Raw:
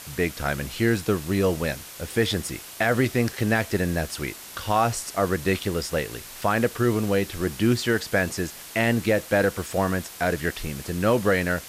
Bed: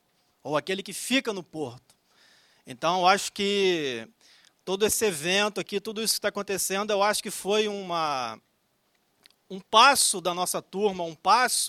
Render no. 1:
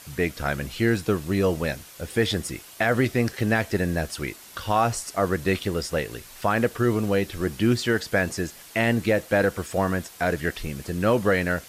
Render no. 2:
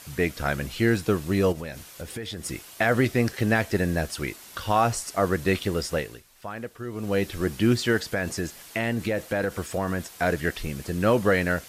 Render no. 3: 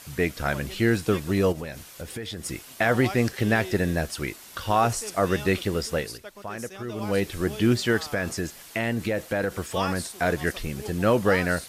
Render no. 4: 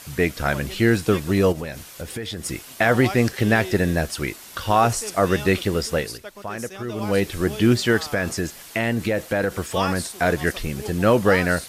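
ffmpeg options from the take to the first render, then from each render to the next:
-af "afftdn=nr=6:nf=-42"
-filter_complex "[0:a]asettb=1/sr,asplit=3[a][b][c];[a]atrim=end=1.524[d];[b]atrim=start=1.52:end=2.46,asetpts=PTS-STARTPTS,afade=t=in:d=0.004:c=qsin,afade=t=out:st=0.936:d=0.004:c=qsin,acompressor=threshold=-31dB:ratio=6:attack=3.2:release=140:knee=1:detection=peak[e];[c]atrim=start=2.456[f];[d][e]acrossfade=d=0.004:c1=hsin:c2=qsin[g];[g][f]acrossfade=d=0.004:c1=qsin:c2=hsin,asettb=1/sr,asplit=3[h][i][j];[h]atrim=end=7.974[k];[i]atrim=start=7.97:end=10.14,asetpts=PTS-STARTPTS,afade=t=in:d=0.004:c=qsin,afade=t=out:st=2.166:d=0.004:c=qsin,acompressor=threshold=-23dB:ratio=3:attack=3.2:release=140:knee=1:detection=peak[l];[j]atrim=start=10.136[m];[k][l]acrossfade=d=0.004:c1=hsin:c2=qsin[n];[n][m]acrossfade=d=0.004:c1=qsin:c2=hsin,asplit=3[o][p][q];[o]atrim=end=6.23,asetpts=PTS-STARTPTS,afade=t=out:st=5.92:d=0.31:silence=0.223872[r];[p]atrim=start=6.23:end=6.92,asetpts=PTS-STARTPTS,volume=-13dB[s];[q]atrim=start=6.92,asetpts=PTS-STARTPTS,afade=t=in:d=0.31:silence=0.223872[t];[r][s][t]concat=n=3:v=0:a=1"
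-filter_complex "[1:a]volume=-15dB[a];[0:a][a]amix=inputs=2:normalize=0"
-af "volume=4dB"

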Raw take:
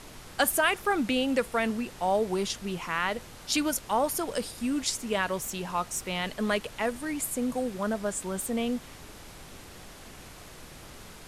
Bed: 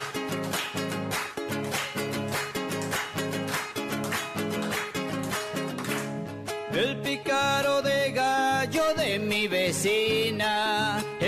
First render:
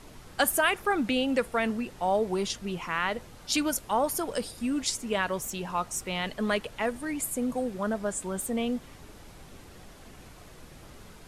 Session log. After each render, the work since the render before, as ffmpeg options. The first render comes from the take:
-af "afftdn=nr=6:nf=-47"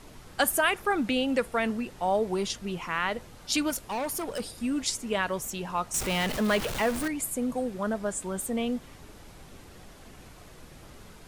-filter_complex "[0:a]asettb=1/sr,asplit=3[a][b][c];[a]atrim=end=3.704[d];[b]atrim=start=3.7:end=4.4,asetpts=PTS-STARTPTS,afade=t=in:d=0.004:c=qsin,afade=t=out:st=0.696:d=0.004:c=qsin,volume=28.5dB,asoftclip=hard,volume=-28.5dB[e];[c]atrim=start=4.396[f];[d][e]acrossfade=d=0.004:c1=hsin:c2=qsin[g];[g][f]acrossfade=d=0.004:c1=qsin:c2=hsin,asettb=1/sr,asplit=3[h][i][j];[h]atrim=end=5.944[k];[i]atrim=start=5.94:end=7.08,asetpts=PTS-STARTPTS,afade=t=in:d=0.004:c=qsin,afade=t=out:st=1.136:d=0.004:c=qsin,aeval=exprs='val(0)+0.5*0.0376*sgn(val(0))':c=same[l];[j]atrim=start=7.076[m];[k][l]acrossfade=d=0.004:c1=hsin:c2=qsin[n];[n][m]acrossfade=d=0.004:c1=qsin:c2=hsin"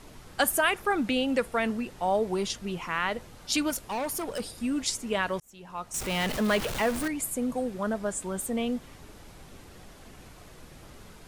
-filter_complex "[0:a]asplit=2[a][b];[a]atrim=end=5.4,asetpts=PTS-STARTPTS,afade=t=out:st=5.396:d=0.004:c=hsin[c];[b]atrim=start=5.4,asetpts=PTS-STARTPTS,afade=t=in:d=0.86[d];[c][d]concat=n=2:v=0:a=1"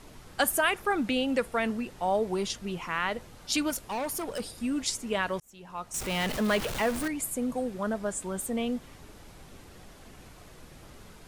-af "volume=-1dB"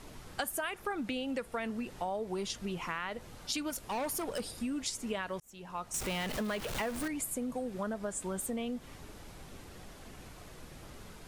-af "acompressor=threshold=-33dB:ratio=6"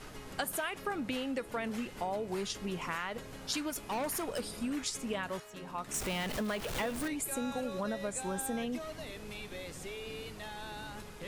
-filter_complex "[1:a]volume=-19dB[a];[0:a][a]amix=inputs=2:normalize=0"

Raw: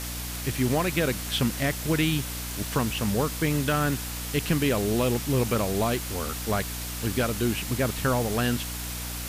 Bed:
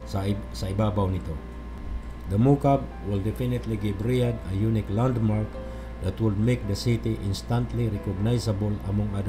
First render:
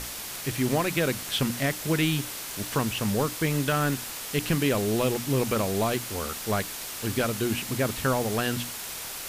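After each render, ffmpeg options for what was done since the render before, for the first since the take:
-af "bandreject=f=60:t=h:w=6,bandreject=f=120:t=h:w=6,bandreject=f=180:t=h:w=6,bandreject=f=240:t=h:w=6,bandreject=f=300:t=h:w=6"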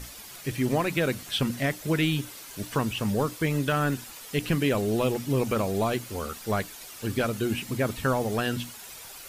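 -af "afftdn=nr=10:nf=-37"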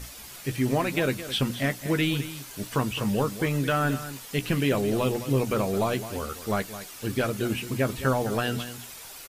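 -filter_complex "[0:a]asplit=2[a][b];[b]adelay=15,volume=-11dB[c];[a][c]amix=inputs=2:normalize=0,aecho=1:1:214:0.224"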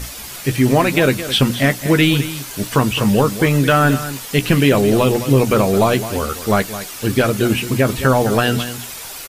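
-af "volume=11.5dB,alimiter=limit=-3dB:level=0:latency=1"

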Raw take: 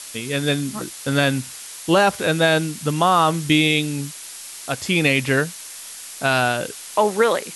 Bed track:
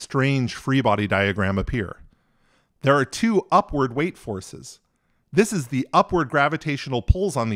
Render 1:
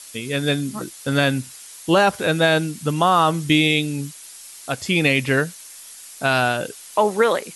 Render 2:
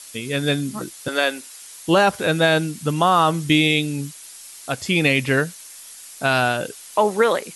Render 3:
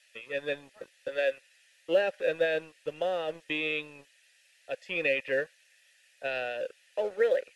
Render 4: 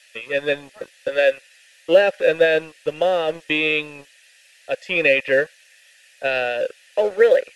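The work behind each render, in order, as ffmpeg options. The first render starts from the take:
-af "afftdn=nr=7:nf=-37"
-filter_complex "[0:a]asettb=1/sr,asplit=3[a][b][c];[a]atrim=end=1.084[d];[b]atrim=start=1.08:end=1.62,asetpts=PTS-STARTPTS,afade=t=in:d=0.004:c=qsin,afade=t=out:st=0.536:d=0.004:c=qsin,highpass=f=360:w=0.5412,highpass=f=360:w=1.3066[e];[c]atrim=start=1.616[f];[d][e]acrossfade=d=0.004:c1=hsin:c2=qsin[g];[g][f]acrossfade=d=0.004:c1=qsin:c2=hsin"
-filter_complex "[0:a]asplit=3[a][b][c];[a]bandpass=f=530:t=q:w=8,volume=0dB[d];[b]bandpass=f=1.84k:t=q:w=8,volume=-6dB[e];[c]bandpass=f=2.48k:t=q:w=8,volume=-9dB[f];[d][e][f]amix=inputs=3:normalize=0,acrossover=split=700|2800[g][h][i];[g]aeval=exprs='sgn(val(0))*max(abs(val(0))-0.00473,0)':c=same[j];[j][h][i]amix=inputs=3:normalize=0"
-af "volume=11.5dB"

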